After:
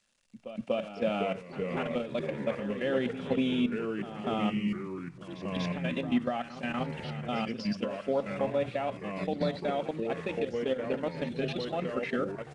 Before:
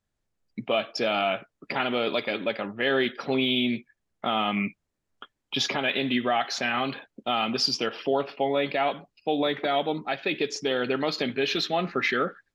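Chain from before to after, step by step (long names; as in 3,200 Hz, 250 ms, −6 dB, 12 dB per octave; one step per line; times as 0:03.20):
spike at every zero crossing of −31 dBFS
low-shelf EQ 410 Hz −8 dB
output level in coarse steps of 14 dB
hollow resonant body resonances 220/530/2,700 Hz, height 10 dB, ringing for 35 ms
delay with pitch and tempo change per echo 376 ms, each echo −3 semitones, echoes 3, each echo −6 dB
backwards echo 241 ms −12.5 dB
downsampling to 22,050 Hz
RIAA equalisation playback
level −7 dB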